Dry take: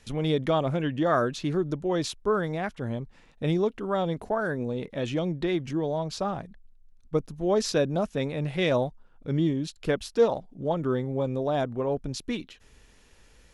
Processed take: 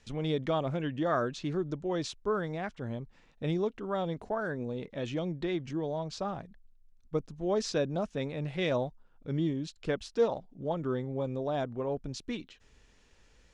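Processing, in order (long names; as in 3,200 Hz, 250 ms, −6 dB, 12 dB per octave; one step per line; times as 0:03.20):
low-pass filter 8,000 Hz 24 dB per octave
level −5.5 dB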